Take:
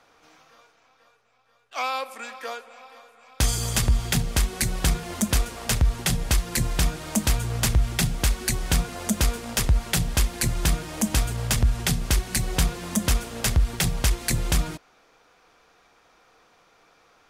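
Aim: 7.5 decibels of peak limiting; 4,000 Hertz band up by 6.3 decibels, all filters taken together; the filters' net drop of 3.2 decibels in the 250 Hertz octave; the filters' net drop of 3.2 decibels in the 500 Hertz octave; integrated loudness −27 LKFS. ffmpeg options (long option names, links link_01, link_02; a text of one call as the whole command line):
ffmpeg -i in.wav -af "equalizer=frequency=250:width_type=o:gain=-4,equalizer=frequency=500:width_type=o:gain=-3,equalizer=frequency=4000:width_type=o:gain=8,volume=-1.5dB,alimiter=limit=-13dB:level=0:latency=1" out.wav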